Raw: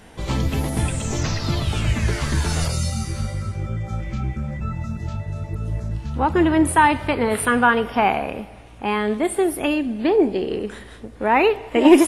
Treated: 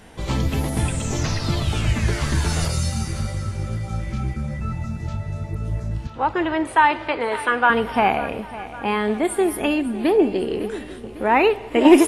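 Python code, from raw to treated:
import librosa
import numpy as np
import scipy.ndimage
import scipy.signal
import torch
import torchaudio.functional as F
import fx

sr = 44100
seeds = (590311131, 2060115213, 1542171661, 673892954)

y = fx.bandpass_edges(x, sr, low_hz=450.0, high_hz=4900.0, at=(6.07, 7.7))
y = fx.echo_feedback(y, sr, ms=553, feedback_pct=54, wet_db=-16.0)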